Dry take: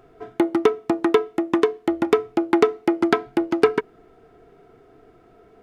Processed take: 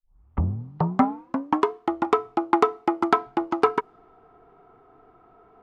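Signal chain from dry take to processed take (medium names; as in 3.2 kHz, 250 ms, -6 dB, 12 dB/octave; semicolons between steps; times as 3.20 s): tape start-up on the opening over 1.71 s; level-controlled noise filter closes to 2.8 kHz, open at -15.5 dBFS; high-order bell 1 kHz +11 dB 1 oct; trim -5.5 dB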